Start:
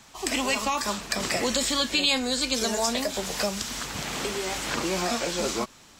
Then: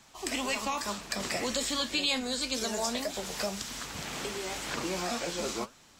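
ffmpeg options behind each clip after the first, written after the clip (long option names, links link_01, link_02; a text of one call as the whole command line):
ffmpeg -i in.wav -af "flanger=delay=5.1:depth=9.1:regen=74:speed=1.9:shape=triangular,volume=-1.5dB" out.wav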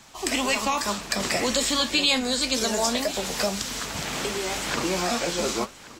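ffmpeg -i in.wav -af "aecho=1:1:1129:0.119,volume=7.5dB" out.wav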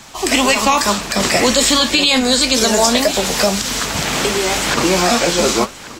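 ffmpeg -i in.wav -af "alimiter=level_in=12.5dB:limit=-1dB:release=50:level=0:latency=1,volume=-1dB" out.wav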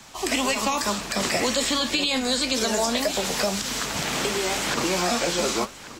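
ffmpeg -i in.wav -filter_complex "[0:a]acrossover=split=110|600|3800[link_01][link_02][link_03][link_04];[link_01]acompressor=threshold=-37dB:ratio=4[link_05];[link_02]acompressor=threshold=-18dB:ratio=4[link_06];[link_03]acompressor=threshold=-17dB:ratio=4[link_07];[link_04]acompressor=threshold=-20dB:ratio=4[link_08];[link_05][link_06][link_07][link_08]amix=inputs=4:normalize=0,volume=-7.5dB" out.wav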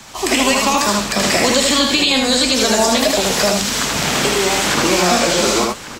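ffmpeg -i in.wav -af "aecho=1:1:78:0.708,volume=7.5dB" out.wav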